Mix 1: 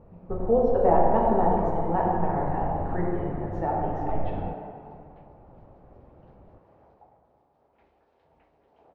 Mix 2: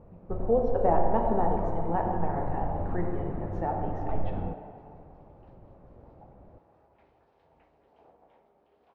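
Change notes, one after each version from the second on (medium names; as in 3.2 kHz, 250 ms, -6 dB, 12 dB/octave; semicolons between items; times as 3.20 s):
speech: send -6.0 dB; second sound: entry -0.80 s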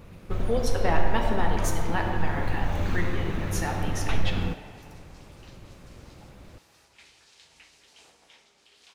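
first sound +6.0 dB; master: remove resonant low-pass 720 Hz, resonance Q 1.7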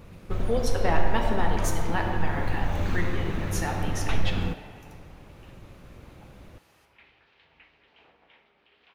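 second sound: add low-pass 2.8 kHz 24 dB/octave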